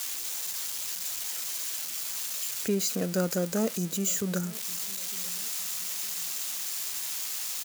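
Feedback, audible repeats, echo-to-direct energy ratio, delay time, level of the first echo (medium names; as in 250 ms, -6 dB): 36%, 2, -21.5 dB, 907 ms, -22.0 dB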